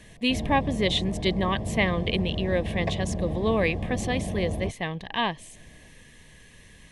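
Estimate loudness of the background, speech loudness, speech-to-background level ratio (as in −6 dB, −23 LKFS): −32.0 LKFS, −27.5 LKFS, 4.5 dB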